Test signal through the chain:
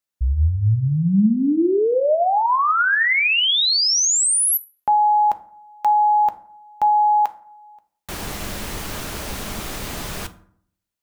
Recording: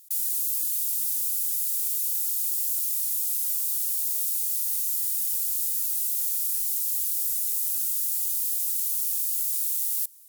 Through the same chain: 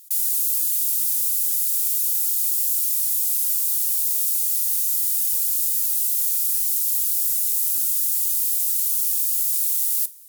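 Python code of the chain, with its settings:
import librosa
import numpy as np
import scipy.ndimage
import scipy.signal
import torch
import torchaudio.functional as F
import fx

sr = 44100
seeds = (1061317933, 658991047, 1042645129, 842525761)

y = fx.rev_fdn(x, sr, rt60_s=0.6, lf_ratio=1.2, hf_ratio=0.55, size_ms=29.0, drr_db=10.0)
y = F.gain(torch.from_numpy(y), 5.0).numpy()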